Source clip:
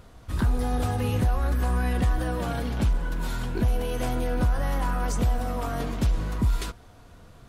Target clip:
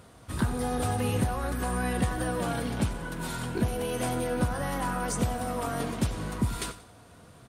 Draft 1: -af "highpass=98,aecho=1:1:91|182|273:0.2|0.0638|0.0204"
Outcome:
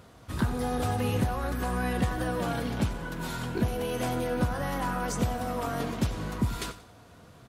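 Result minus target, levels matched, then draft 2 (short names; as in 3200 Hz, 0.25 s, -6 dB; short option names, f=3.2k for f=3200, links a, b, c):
8000 Hz band -4.0 dB
-af "highpass=98,equalizer=f=9k:w=5.2:g=11,aecho=1:1:91|182|273:0.2|0.0638|0.0204"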